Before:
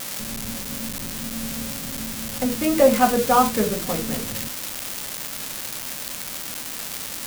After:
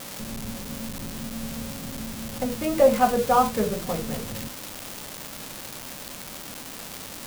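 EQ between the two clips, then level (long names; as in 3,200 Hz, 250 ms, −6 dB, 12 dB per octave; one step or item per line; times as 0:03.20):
parametric band 1,800 Hz −3.5 dB 1.5 octaves
dynamic equaliser 280 Hz, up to −7 dB, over −37 dBFS, Q 1.9
high-shelf EQ 3,300 Hz −8.5 dB
0.0 dB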